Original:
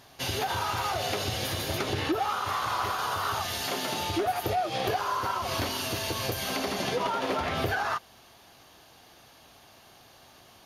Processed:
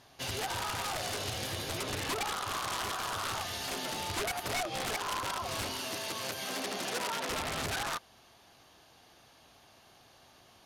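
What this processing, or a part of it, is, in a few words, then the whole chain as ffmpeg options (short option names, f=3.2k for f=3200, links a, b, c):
overflowing digital effects unit: -filter_complex "[0:a]aeval=exprs='(mod(14.1*val(0)+1,2)-1)/14.1':c=same,lowpass=12k,asettb=1/sr,asplit=3[a][b][c];[a]atrim=end=5.794[d];[b]atrim=start=5.79:end=7.29,asetpts=PTS-STARTPTS,afade=t=in:d=0.004:c=qsin,afade=t=out:st=1.496:d=0.004:c=qsin,highpass=180[e];[c]atrim=start=7.286[f];[d][e]acrossfade=d=0.004:c1=hsin:c2=qsin[g];[g][f]acrossfade=d=0.004:c1=qsin:c2=hsin,volume=-5dB"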